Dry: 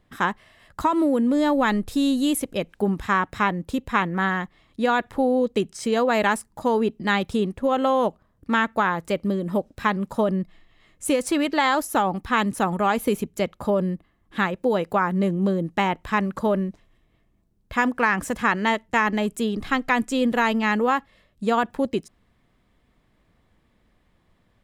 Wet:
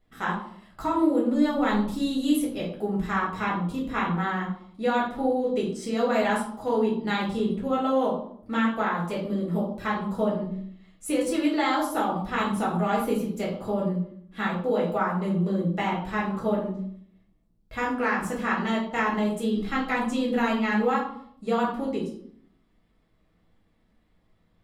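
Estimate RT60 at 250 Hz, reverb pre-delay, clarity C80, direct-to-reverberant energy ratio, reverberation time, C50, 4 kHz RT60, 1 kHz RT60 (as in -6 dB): 0.85 s, 4 ms, 9.0 dB, -5.5 dB, 0.65 s, 6.0 dB, 0.50 s, 0.60 s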